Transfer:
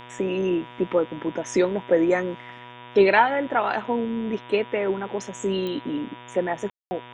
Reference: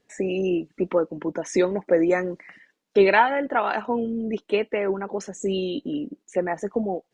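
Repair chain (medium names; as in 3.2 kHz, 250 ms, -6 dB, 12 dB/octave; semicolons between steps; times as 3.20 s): de-click; de-hum 122 Hz, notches 30; band-stop 970 Hz, Q 30; room tone fill 6.70–6.91 s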